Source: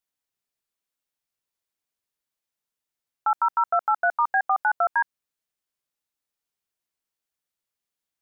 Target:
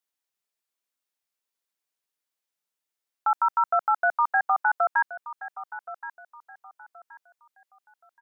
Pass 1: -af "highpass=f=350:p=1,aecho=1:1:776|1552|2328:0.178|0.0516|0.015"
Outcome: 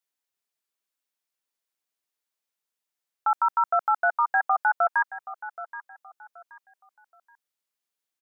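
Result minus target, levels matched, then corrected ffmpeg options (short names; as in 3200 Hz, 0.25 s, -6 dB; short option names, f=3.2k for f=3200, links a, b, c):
echo 0.298 s early
-af "highpass=f=350:p=1,aecho=1:1:1074|2148|3222:0.178|0.0516|0.015"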